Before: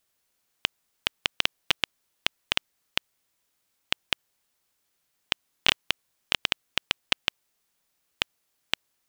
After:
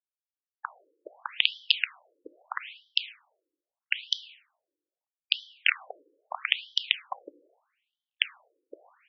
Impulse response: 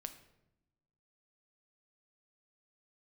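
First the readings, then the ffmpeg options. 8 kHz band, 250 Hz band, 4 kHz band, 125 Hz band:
−15.0 dB, below −10 dB, −1.5 dB, below −40 dB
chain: -filter_complex "[0:a]acrusher=bits=4:dc=4:mix=0:aa=0.000001,asplit=2[link_01][link_02];[1:a]atrim=start_sample=2205[link_03];[link_02][link_03]afir=irnorm=-1:irlink=0,volume=10.5dB[link_04];[link_01][link_04]amix=inputs=2:normalize=0,afftfilt=real='re*between(b*sr/1024,380*pow(4300/380,0.5+0.5*sin(2*PI*0.78*pts/sr))/1.41,380*pow(4300/380,0.5+0.5*sin(2*PI*0.78*pts/sr))*1.41)':imag='im*between(b*sr/1024,380*pow(4300/380,0.5+0.5*sin(2*PI*0.78*pts/sr))/1.41,380*pow(4300/380,0.5+0.5*sin(2*PI*0.78*pts/sr))*1.41)':win_size=1024:overlap=0.75,volume=-6dB"

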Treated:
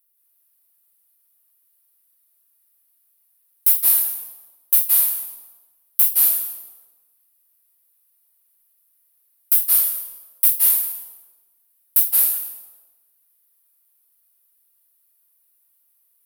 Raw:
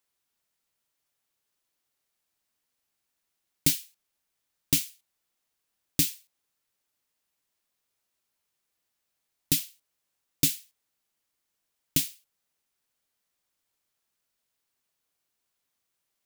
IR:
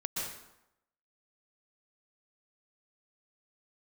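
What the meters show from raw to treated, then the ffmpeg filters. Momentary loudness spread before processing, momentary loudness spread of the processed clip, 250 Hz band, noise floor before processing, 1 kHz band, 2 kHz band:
10 LU, 17 LU, below −15 dB, −81 dBFS, can't be measured, +1.5 dB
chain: -filter_complex "[0:a]aeval=exprs='(mod(11.2*val(0)+1,2)-1)/11.2':channel_layout=same,aexciter=amount=15:drive=3.1:freq=9700,equalizer=frequency=110:width=0.65:gain=-13[link_01];[1:a]atrim=start_sample=2205,asetrate=31311,aresample=44100[link_02];[link_01][link_02]afir=irnorm=-1:irlink=0,volume=-5dB"

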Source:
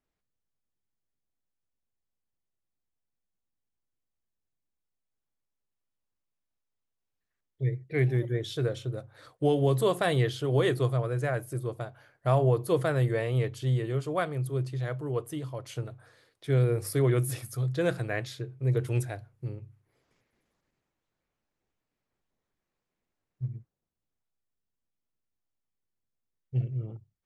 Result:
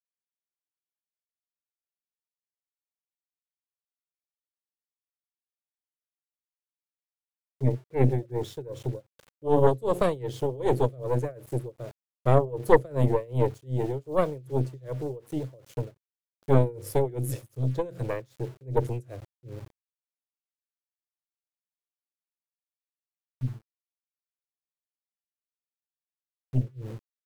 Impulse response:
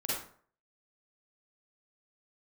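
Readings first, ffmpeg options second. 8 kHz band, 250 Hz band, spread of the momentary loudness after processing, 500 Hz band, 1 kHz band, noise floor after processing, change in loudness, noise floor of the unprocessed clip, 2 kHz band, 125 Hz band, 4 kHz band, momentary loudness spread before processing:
−4.5 dB, +1.5 dB, 17 LU, +2.5 dB, +4.0 dB, below −85 dBFS, +1.0 dB, −85 dBFS, −5.0 dB, −1.0 dB, −8.0 dB, 14 LU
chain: -filter_complex "[0:a]lowshelf=frequency=690:width_type=q:width=3:gain=8.5,acrossover=split=320|650|2600[link_01][link_02][link_03][link_04];[link_04]aexciter=amount=2.1:drive=2.4:freq=6100[link_05];[link_01][link_02][link_03][link_05]amix=inputs=4:normalize=0,aeval=exprs='val(0)*gte(abs(val(0)),0.0119)':channel_layout=same,tremolo=f=2.6:d=0.93,aeval=exprs='0.75*(cos(1*acos(clip(val(0)/0.75,-1,1)))-cos(1*PI/2))+0.237*(cos(4*acos(clip(val(0)/0.75,-1,1)))-cos(4*PI/2))':channel_layout=same,volume=-5.5dB"

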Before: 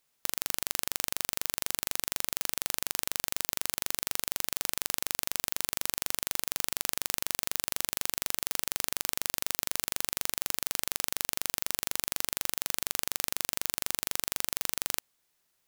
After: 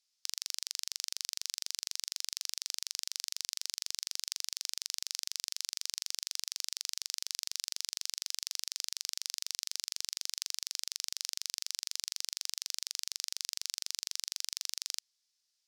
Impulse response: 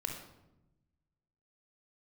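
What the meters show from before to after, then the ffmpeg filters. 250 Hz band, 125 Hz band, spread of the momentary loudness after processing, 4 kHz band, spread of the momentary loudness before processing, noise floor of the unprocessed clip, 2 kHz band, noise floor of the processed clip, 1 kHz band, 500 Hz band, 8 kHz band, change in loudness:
below −30 dB, below −35 dB, 0 LU, +0.5 dB, 0 LU, −75 dBFS, −11.5 dB, −81 dBFS, −18.5 dB, below −20 dB, −3.5 dB, −5.5 dB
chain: -af "bandpass=frequency=5100:width_type=q:width=2.8:csg=0,volume=4dB"

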